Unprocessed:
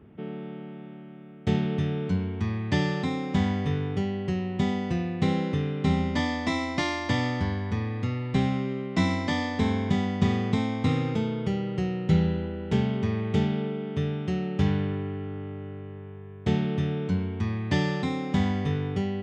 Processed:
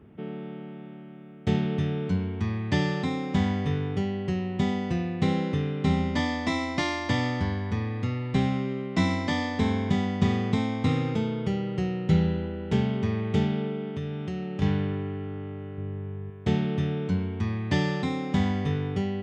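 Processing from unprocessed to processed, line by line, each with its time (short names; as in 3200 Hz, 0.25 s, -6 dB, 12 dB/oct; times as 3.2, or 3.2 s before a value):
13.88–14.62 compressor 2.5:1, threshold -30 dBFS
15.78–16.3 low shelf 270 Hz +8.5 dB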